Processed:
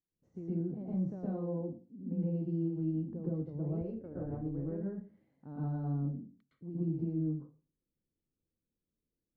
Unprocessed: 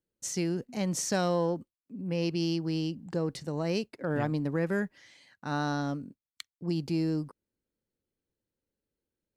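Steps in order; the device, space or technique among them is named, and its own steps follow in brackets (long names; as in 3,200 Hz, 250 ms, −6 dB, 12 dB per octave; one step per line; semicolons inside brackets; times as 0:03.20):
television next door (downward compressor 3 to 1, threshold −31 dBFS, peak gain reduction 6 dB; low-pass filter 410 Hz 12 dB per octave; convolution reverb RT60 0.35 s, pre-delay 108 ms, DRR −7.5 dB)
0:03.81–0:04.80: low shelf with overshoot 110 Hz +9.5 dB, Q 3
level −8.5 dB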